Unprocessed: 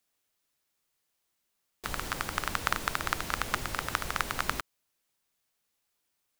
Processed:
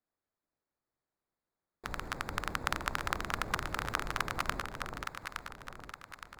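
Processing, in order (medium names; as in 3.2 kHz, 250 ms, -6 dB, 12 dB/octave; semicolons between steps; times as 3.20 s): local Wiener filter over 15 samples; on a send: echo whose repeats swap between lows and highs 433 ms, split 850 Hz, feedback 67%, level -2.5 dB; on the sum: trim -3.5 dB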